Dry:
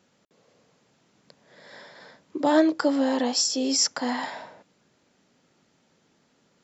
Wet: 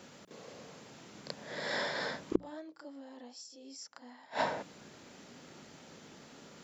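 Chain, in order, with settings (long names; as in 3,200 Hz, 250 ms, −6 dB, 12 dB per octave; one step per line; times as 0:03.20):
gate with flip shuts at −23 dBFS, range −38 dB
mains-hum notches 60/120/180 Hz
backwards echo 33 ms −9.5 dB
level +11.5 dB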